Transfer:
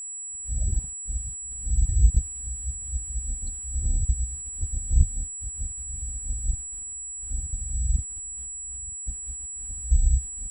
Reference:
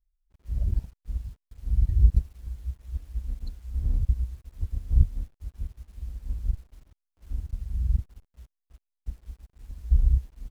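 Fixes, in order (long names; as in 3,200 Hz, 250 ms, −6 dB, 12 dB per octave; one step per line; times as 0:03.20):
notch filter 7,800 Hz, Q 30
echo removal 933 ms −22 dB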